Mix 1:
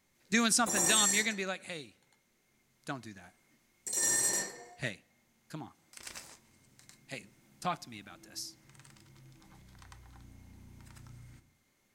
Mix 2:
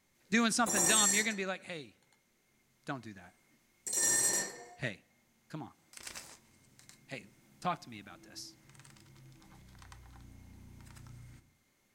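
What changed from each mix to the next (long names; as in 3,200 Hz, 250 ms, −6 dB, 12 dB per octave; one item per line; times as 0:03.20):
speech: add high-shelf EQ 5,400 Hz −10 dB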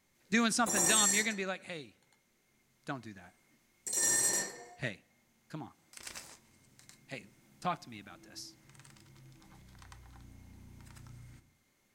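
nothing changed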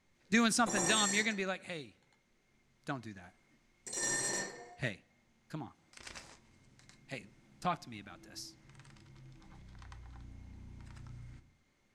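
background: add high-frequency loss of the air 76 metres
master: add low-shelf EQ 61 Hz +9 dB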